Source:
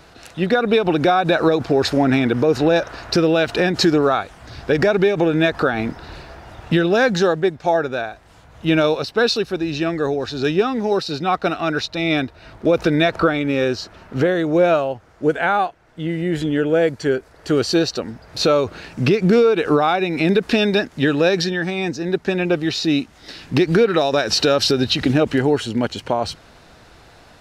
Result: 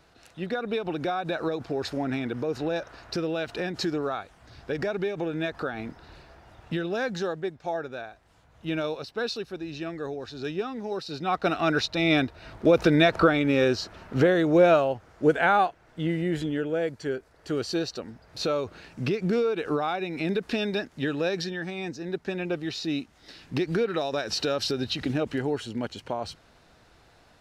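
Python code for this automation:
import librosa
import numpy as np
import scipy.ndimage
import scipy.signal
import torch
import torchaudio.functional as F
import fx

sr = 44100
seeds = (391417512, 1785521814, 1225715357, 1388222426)

y = fx.gain(x, sr, db=fx.line((10.96, -13.0), (11.59, -3.0), (16.04, -3.0), (16.7, -11.0)))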